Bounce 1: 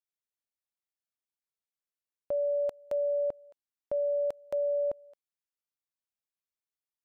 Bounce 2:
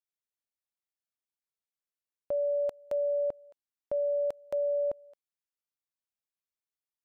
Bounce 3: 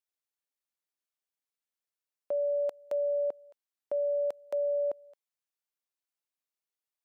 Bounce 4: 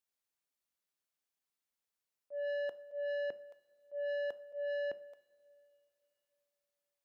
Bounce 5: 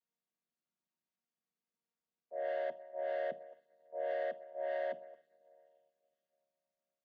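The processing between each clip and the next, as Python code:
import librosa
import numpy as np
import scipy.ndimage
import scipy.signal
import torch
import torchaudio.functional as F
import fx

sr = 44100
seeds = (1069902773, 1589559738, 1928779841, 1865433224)

y1 = x
y2 = scipy.signal.sosfilt(scipy.signal.butter(2, 310.0, 'highpass', fs=sr, output='sos'), y1)
y3 = fx.auto_swell(y2, sr, attack_ms=197.0)
y3 = 10.0 ** (-35.0 / 20.0) * np.tanh(y3 / 10.0 ** (-35.0 / 20.0))
y3 = fx.rev_double_slope(y3, sr, seeds[0], early_s=0.49, late_s=3.5, knee_db=-18, drr_db=13.0)
y3 = F.gain(torch.from_numpy(y3), 1.0).numpy()
y4 = fx.chord_vocoder(y3, sr, chord='minor triad', root=51)
y4 = F.gain(torch.from_numpy(y4), 2.0).numpy()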